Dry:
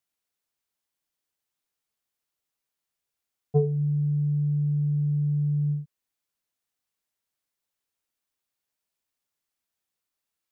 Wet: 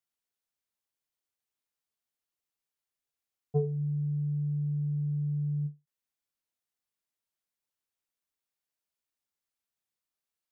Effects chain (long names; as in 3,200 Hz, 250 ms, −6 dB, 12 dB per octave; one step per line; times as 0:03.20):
every ending faded ahead of time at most 290 dB per second
level −6 dB